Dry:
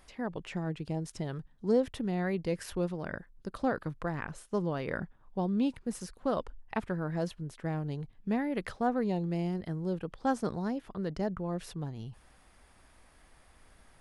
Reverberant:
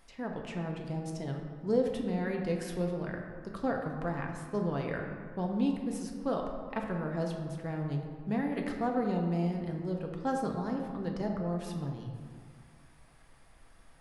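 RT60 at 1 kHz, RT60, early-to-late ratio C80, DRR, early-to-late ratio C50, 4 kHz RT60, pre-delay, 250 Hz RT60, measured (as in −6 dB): 2.1 s, 2.0 s, 5.5 dB, 1.0 dB, 4.0 dB, 1.0 s, 4 ms, 2.1 s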